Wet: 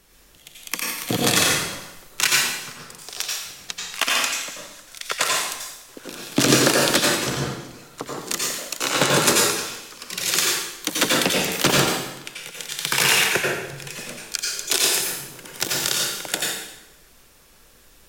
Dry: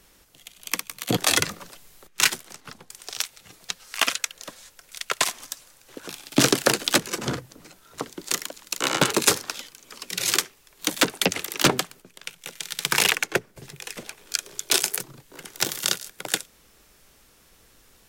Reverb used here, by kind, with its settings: plate-style reverb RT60 0.94 s, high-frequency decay 0.9×, pre-delay 75 ms, DRR -3.5 dB; gain -1 dB

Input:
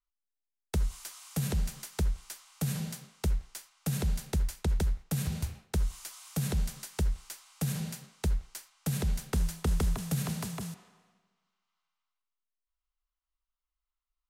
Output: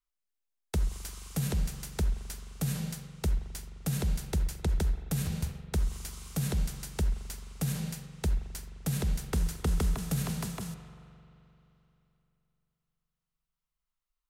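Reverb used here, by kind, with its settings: spring tank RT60 3.2 s, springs 43 ms, chirp 80 ms, DRR 12 dB

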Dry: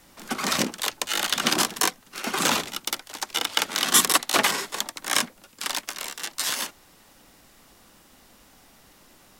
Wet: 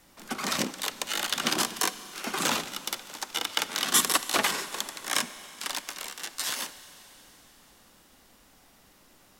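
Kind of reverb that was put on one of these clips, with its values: Schroeder reverb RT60 4 s, combs from 31 ms, DRR 13.5 dB; gain -4.5 dB

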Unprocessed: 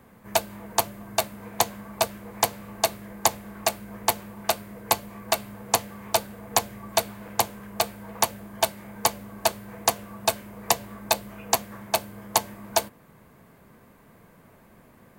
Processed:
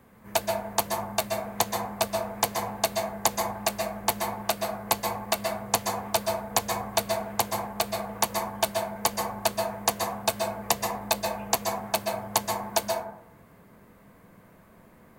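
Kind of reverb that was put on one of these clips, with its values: plate-style reverb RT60 0.73 s, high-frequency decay 0.3×, pre-delay 0.115 s, DRR 1.5 dB; gain -3 dB

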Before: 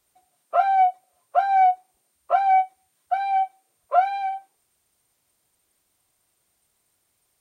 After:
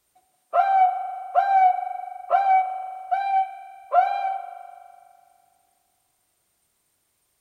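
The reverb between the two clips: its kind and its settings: spring tank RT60 2.3 s, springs 41 ms, chirp 60 ms, DRR 9 dB

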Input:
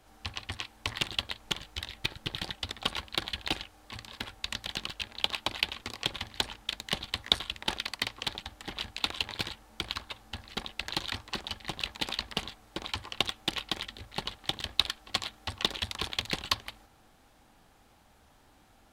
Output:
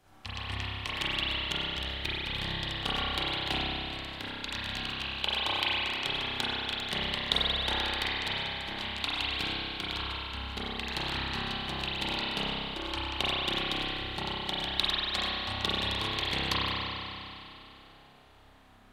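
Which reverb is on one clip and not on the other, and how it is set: spring tank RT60 2.9 s, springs 30 ms, chirp 20 ms, DRR -9 dB; gain -5 dB

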